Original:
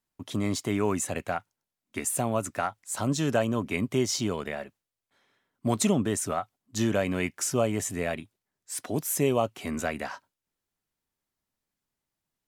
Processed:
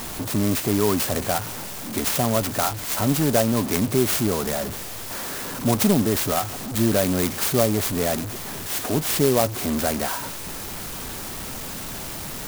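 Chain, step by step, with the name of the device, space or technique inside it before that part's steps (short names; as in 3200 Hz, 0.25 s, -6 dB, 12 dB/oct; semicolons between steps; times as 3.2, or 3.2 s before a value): early CD player with a faulty converter (zero-crossing step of -28.5 dBFS; clock jitter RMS 0.11 ms); gain +4 dB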